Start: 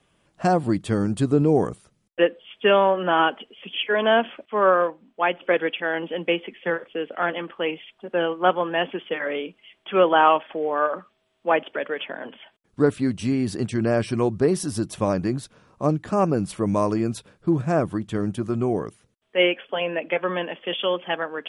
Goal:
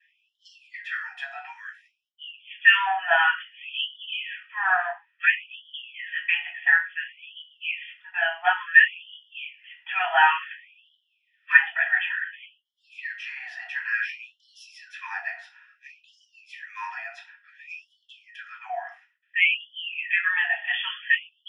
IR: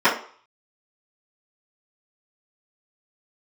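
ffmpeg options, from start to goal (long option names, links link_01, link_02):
-filter_complex "[0:a]asplit=3[link_01][link_02][link_03];[link_01]afade=type=out:start_time=10.85:duration=0.02[link_04];[link_02]aeval=exprs='0.473*(cos(1*acos(clip(val(0)/0.473,-1,1)))-cos(1*PI/2))+0.015*(cos(5*acos(clip(val(0)/0.473,-1,1)))-cos(5*PI/2))':channel_layout=same,afade=type=in:start_time=10.85:duration=0.02,afade=type=out:start_time=11.6:duration=0.02[link_05];[link_03]afade=type=in:start_time=11.6:duration=0.02[link_06];[link_04][link_05][link_06]amix=inputs=3:normalize=0,asplit=3[link_07][link_08][link_09];[link_07]bandpass=frequency=530:width_type=q:width=8,volume=0dB[link_10];[link_08]bandpass=frequency=1840:width_type=q:width=8,volume=-6dB[link_11];[link_09]bandpass=frequency=2480:width_type=q:width=8,volume=-9dB[link_12];[link_10][link_11][link_12]amix=inputs=3:normalize=0[link_13];[1:a]atrim=start_sample=2205,atrim=end_sample=6615[link_14];[link_13][link_14]afir=irnorm=-1:irlink=0,afftfilt=real='re*gte(b*sr/1024,650*pow(2900/650,0.5+0.5*sin(2*PI*0.57*pts/sr)))':imag='im*gte(b*sr/1024,650*pow(2900/650,0.5+0.5*sin(2*PI*0.57*pts/sr)))':win_size=1024:overlap=0.75,volume=-1.5dB"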